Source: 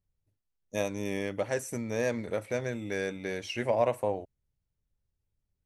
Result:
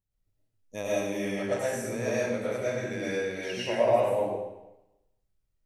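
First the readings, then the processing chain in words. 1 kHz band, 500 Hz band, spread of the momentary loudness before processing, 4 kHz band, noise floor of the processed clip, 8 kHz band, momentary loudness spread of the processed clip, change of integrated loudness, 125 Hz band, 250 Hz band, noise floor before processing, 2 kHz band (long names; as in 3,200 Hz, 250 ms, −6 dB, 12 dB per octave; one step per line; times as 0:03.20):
+3.0 dB, +3.5 dB, 8 LU, +3.0 dB, −77 dBFS, +2.0 dB, 9 LU, +3.0 dB, 0.0 dB, +1.5 dB, −83 dBFS, +2.0 dB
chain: comb and all-pass reverb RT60 0.95 s, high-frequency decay 0.95×, pre-delay 70 ms, DRR −7.5 dB
level −5.5 dB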